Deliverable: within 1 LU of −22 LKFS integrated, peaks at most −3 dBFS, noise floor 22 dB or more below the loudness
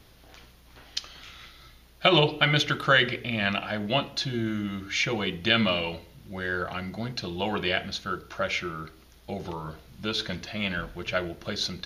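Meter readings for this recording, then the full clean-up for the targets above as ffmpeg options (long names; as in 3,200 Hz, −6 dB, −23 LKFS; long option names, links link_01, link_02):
integrated loudness −27.0 LKFS; sample peak −5.0 dBFS; target loudness −22.0 LKFS
→ -af "volume=5dB,alimiter=limit=-3dB:level=0:latency=1"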